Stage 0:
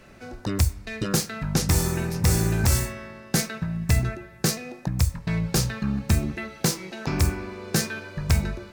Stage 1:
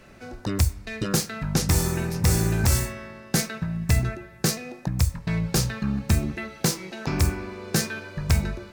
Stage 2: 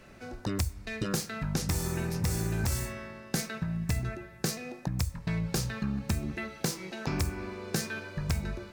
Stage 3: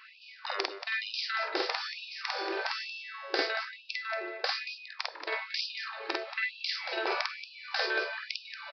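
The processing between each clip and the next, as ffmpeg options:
-af anull
-af "acompressor=threshold=0.0631:ratio=4,volume=0.708"
-af "aecho=1:1:49.56|230.3:0.891|0.355,aresample=11025,aresample=44100,afftfilt=real='re*gte(b*sr/1024,300*pow(2500/300,0.5+0.5*sin(2*PI*1.1*pts/sr)))':imag='im*gte(b*sr/1024,300*pow(2500/300,0.5+0.5*sin(2*PI*1.1*pts/sr)))':win_size=1024:overlap=0.75,volume=1.88"

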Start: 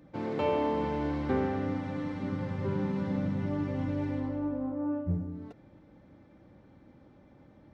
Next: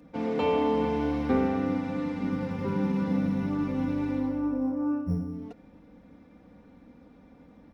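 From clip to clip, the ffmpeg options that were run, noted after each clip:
-filter_complex "[0:a]aecho=1:1:4.2:0.7,acrossover=split=120[s0][s1];[s0]acrusher=samples=8:mix=1:aa=0.000001[s2];[s2][s1]amix=inputs=2:normalize=0,volume=1.26"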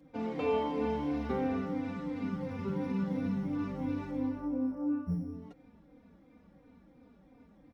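-filter_complex "[0:a]asplit=2[s0][s1];[s1]adelay=3.2,afreqshift=-2.9[s2];[s0][s2]amix=inputs=2:normalize=1,volume=0.708"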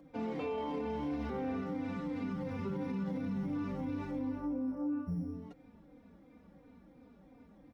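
-filter_complex "[0:a]acrossover=split=220|1100[s0][s1][s2];[s1]acompressor=mode=upward:threshold=0.00126:ratio=2.5[s3];[s0][s3][s2]amix=inputs=3:normalize=0,alimiter=level_in=1.88:limit=0.0631:level=0:latency=1:release=45,volume=0.531"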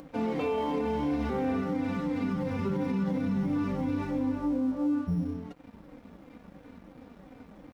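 -filter_complex "[0:a]asplit=2[s0][s1];[s1]acompressor=mode=upward:threshold=0.01:ratio=2.5,volume=0.75[s2];[s0][s2]amix=inputs=2:normalize=0,aeval=exprs='sgn(val(0))*max(abs(val(0))-0.00178,0)':c=same,volume=1.41"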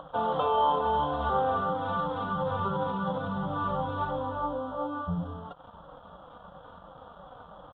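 -af "firequalizer=gain_entry='entry(160,0);entry(250,-14);entry(570,8);entry(1300,14);entry(2200,-22);entry(3300,13);entry(4700,-20)':delay=0.05:min_phase=1"

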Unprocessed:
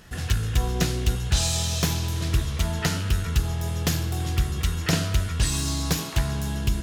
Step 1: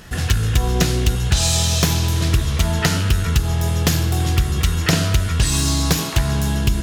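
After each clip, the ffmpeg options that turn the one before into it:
-af "acompressor=threshold=0.1:ratio=6,volume=2.66"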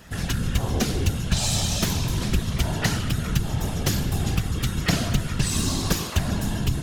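-af "afftfilt=real='hypot(re,im)*cos(2*PI*random(0))':imag='hypot(re,im)*sin(2*PI*random(1))':win_size=512:overlap=0.75"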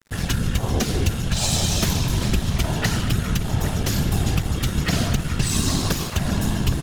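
-filter_complex "[0:a]alimiter=limit=0.237:level=0:latency=1:release=110,aeval=exprs='sgn(val(0))*max(abs(val(0))-0.00891,0)':c=same,asplit=2[s0][s1];[s1]adelay=816.3,volume=0.398,highshelf=f=4000:g=-18.4[s2];[s0][s2]amix=inputs=2:normalize=0,volume=1.58"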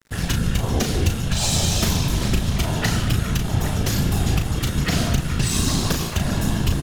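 -filter_complex "[0:a]asplit=2[s0][s1];[s1]adelay=36,volume=0.447[s2];[s0][s2]amix=inputs=2:normalize=0"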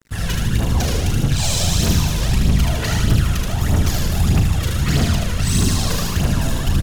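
-af "asoftclip=type=tanh:threshold=0.158,aecho=1:1:77|154|231|308|385|462|539|616:0.708|0.411|0.238|0.138|0.0801|0.0465|0.027|0.0156,aphaser=in_gain=1:out_gain=1:delay=2.1:decay=0.5:speed=1.6:type=triangular"

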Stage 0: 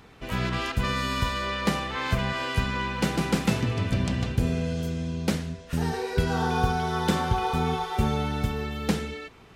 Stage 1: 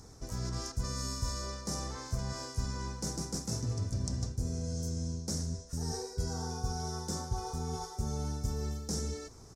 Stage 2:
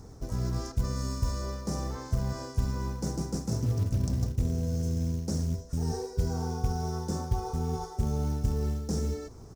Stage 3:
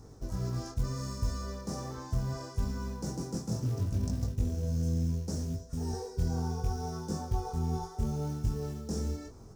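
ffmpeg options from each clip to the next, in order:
-af "areverse,acompressor=threshold=0.0282:ratio=10,areverse,firequalizer=gain_entry='entry(100,0);entry(180,-8);entry(280,-6);entry(1400,-13);entry(2800,-26);entry(5500,10);entry(13000,-4)':delay=0.05:min_phase=1,volume=1.5"
-af "tiltshelf=f=1300:g=5.5,acrusher=bits=7:mode=log:mix=0:aa=0.000001,volume=1.12"
-af "bandreject=f=2100:w=20,flanger=delay=19.5:depth=4.5:speed=0.71"

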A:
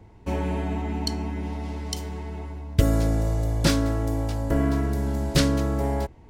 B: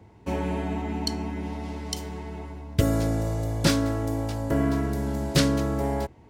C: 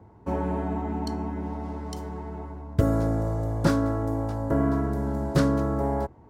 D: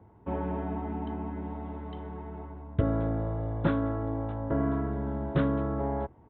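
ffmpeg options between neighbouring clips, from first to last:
-af "highpass=82"
-af "highshelf=f=1800:t=q:w=1.5:g=-10.5"
-af "aresample=8000,aresample=44100,volume=0.596"

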